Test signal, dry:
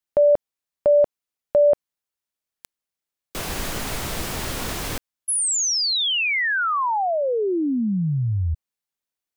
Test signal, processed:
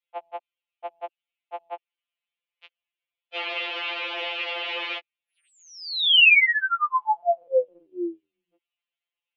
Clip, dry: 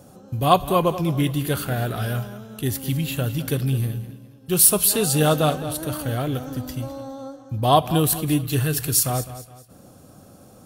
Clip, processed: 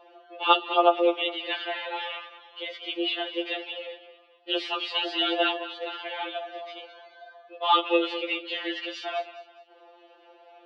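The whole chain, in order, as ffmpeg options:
-af "aexciter=amount=6.3:drive=4.5:freq=2200,highpass=f=220:t=q:w=0.5412,highpass=f=220:t=q:w=1.307,lowpass=f=2700:t=q:w=0.5176,lowpass=f=2700:t=q:w=0.7071,lowpass=f=2700:t=q:w=1.932,afreqshift=180,afftfilt=real='re*2.83*eq(mod(b,8),0)':imag='im*2.83*eq(mod(b,8),0)':win_size=2048:overlap=0.75"

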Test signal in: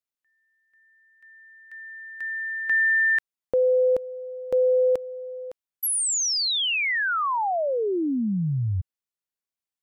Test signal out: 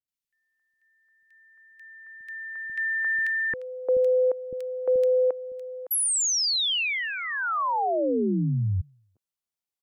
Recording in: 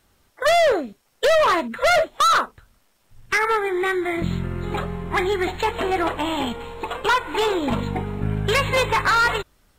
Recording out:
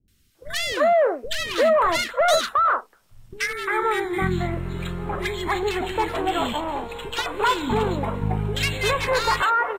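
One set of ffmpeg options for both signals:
-filter_complex "[0:a]acrossover=split=330|1800[s0][s1][s2];[s2]adelay=80[s3];[s1]adelay=350[s4];[s0][s4][s3]amix=inputs=3:normalize=0"

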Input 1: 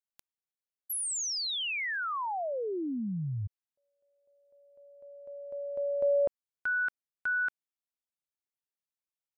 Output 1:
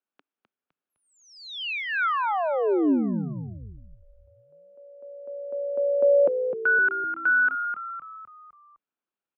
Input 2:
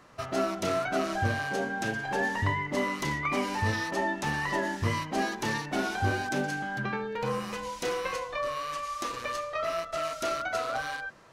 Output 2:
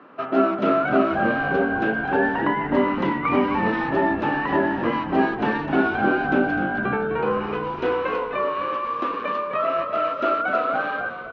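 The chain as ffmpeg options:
-filter_complex "[0:a]highpass=f=190:w=0.5412,highpass=f=190:w=1.3066,equalizer=f=280:t=q:w=4:g=7,equalizer=f=400:t=q:w=4:g=4,equalizer=f=1400:t=q:w=4:g=4,equalizer=f=2000:t=q:w=4:g=-7,lowpass=f=2700:w=0.5412,lowpass=f=2700:w=1.3066,asplit=6[s0][s1][s2][s3][s4][s5];[s1]adelay=255,afreqshift=-60,volume=0.376[s6];[s2]adelay=510,afreqshift=-120,volume=0.176[s7];[s3]adelay=765,afreqshift=-180,volume=0.0832[s8];[s4]adelay=1020,afreqshift=-240,volume=0.0389[s9];[s5]adelay=1275,afreqshift=-300,volume=0.0184[s10];[s0][s6][s7][s8][s9][s10]amix=inputs=6:normalize=0,volume=2.24"

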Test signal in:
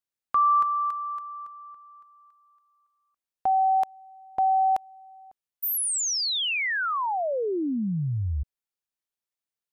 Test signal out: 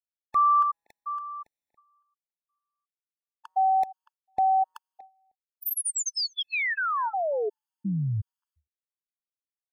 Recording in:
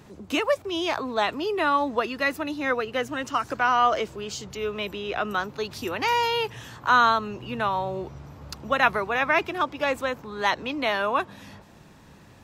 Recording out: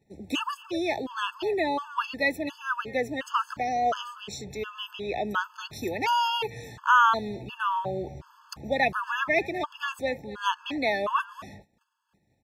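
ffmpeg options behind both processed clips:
-filter_complex "[0:a]asplit=2[s0][s1];[s1]adelay=240,highpass=300,lowpass=3400,asoftclip=type=hard:threshold=0.158,volume=0.126[s2];[s0][s2]amix=inputs=2:normalize=0,agate=range=0.0891:threshold=0.00794:ratio=3:release=170:detection=rms,afftfilt=real='re*gt(sin(2*PI*1.4*pts/sr)*(1-2*mod(floor(b*sr/1024/870),2)),0)':imag='im*gt(sin(2*PI*1.4*pts/sr)*(1-2*mod(floor(b*sr/1024/870),2)),0)':win_size=1024:overlap=0.75"

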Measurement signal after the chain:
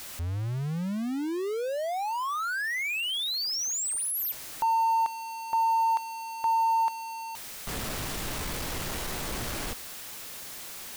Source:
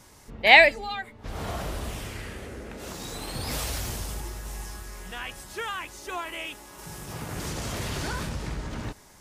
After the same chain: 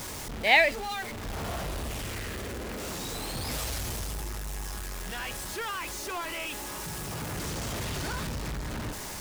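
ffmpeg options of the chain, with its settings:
-af "aeval=exprs='val(0)+0.5*0.0501*sgn(val(0))':c=same,volume=0.447"

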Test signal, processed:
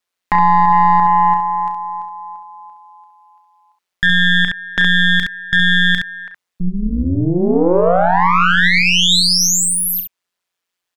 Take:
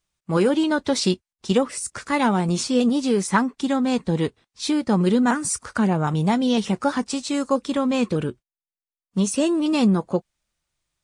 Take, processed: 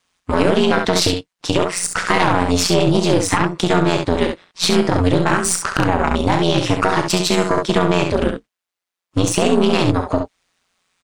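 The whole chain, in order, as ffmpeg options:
-filter_complex "[0:a]highpass=66,acompressor=threshold=0.0708:ratio=6,asplit=2[s0][s1];[s1]highpass=f=720:p=1,volume=2.82,asoftclip=type=tanh:threshold=0.282[s2];[s0][s2]amix=inputs=2:normalize=0,lowpass=f=3400:p=1,volume=0.501,aeval=exprs='val(0)*sin(2*PI*89*n/s)':c=same,aeval=exprs='0.188*(cos(1*acos(clip(val(0)/0.188,-1,1)))-cos(1*PI/2))+0.0944*(cos(2*acos(clip(val(0)/0.188,-1,1)))-cos(2*PI/2))+0.00299*(cos(7*acos(clip(val(0)/0.188,-1,1)))-cos(7*PI/2))':c=same,aecho=1:1:34|67:0.299|0.447,alimiter=level_in=5.96:limit=0.891:release=50:level=0:latency=1,volume=0.891"

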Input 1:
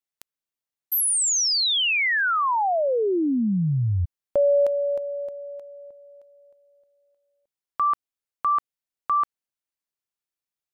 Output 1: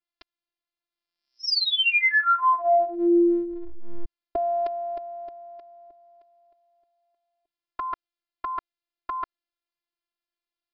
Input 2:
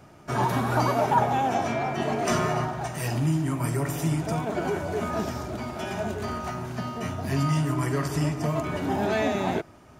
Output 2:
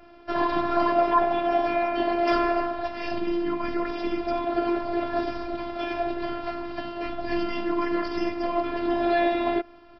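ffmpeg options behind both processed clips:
-af "afftfilt=real='hypot(re,im)*cos(PI*b)':imag='0':win_size=512:overlap=0.75,adynamicequalizer=threshold=0.00316:dfrequency=3900:dqfactor=3.1:tfrequency=3900:tqfactor=3.1:attack=5:release=100:ratio=0.4:range=3:mode=cutabove:tftype=bell,aresample=11025,aresample=44100,acontrast=38"

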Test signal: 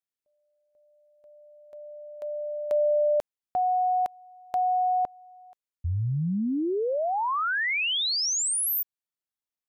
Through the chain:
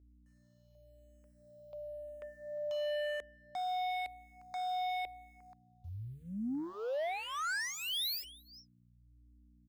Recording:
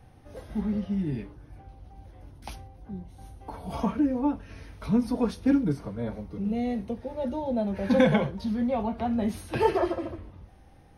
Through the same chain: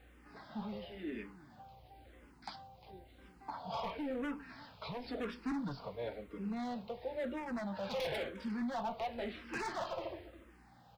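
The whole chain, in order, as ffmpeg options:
-filter_complex "[0:a]highpass=f=870:p=1,asplit=2[s0][s1];[s1]alimiter=level_in=1.33:limit=0.0631:level=0:latency=1:release=144,volume=0.75,volume=0.794[s2];[s0][s2]amix=inputs=2:normalize=0,aresample=11025,aresample=44100,asoftclip=type=tanh:threshold=0.0422,acrusher=bits=11:mix=0:aa=0.000001,aeval=exprs='val(0)+0.00126*(sin(2*PI*60*n/s)+sin(2*PI*2*60*n/s)/2+sin(2*PI*3*60*n/s)/3+sin(2*PI*4*60*n/s)/4+sin(2*PI*5*60*n/s)/5)':c=same,aecho=1:1:354:0.1,aeval=exprs='0.0316*(abs(mod(val(0)/0.0316+3,4)-2)-1)':c=same,asplit=2[s3][s4];[s4]afreqshift=-0.97[s5];[s3][s5]amix=inputs=2:normalize=1,volume=0.841"

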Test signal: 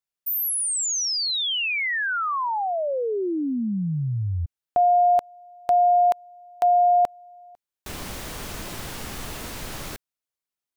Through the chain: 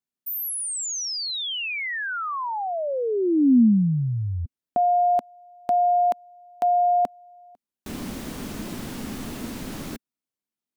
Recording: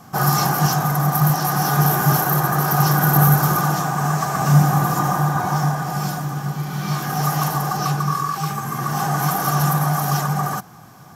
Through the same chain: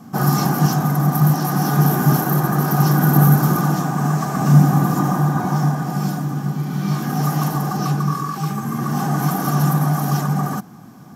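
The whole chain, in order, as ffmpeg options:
-af "equalizer=f=240:w=1.2:g=15,volume=0.631"

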